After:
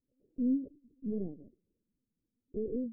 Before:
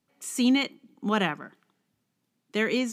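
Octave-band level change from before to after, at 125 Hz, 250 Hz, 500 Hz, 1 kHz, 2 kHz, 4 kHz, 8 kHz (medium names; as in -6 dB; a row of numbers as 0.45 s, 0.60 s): -9.0 dB, -7.5 dB, -9.0 dB, under -35 dB, under -40 dB, under -40 dB, under -40 dB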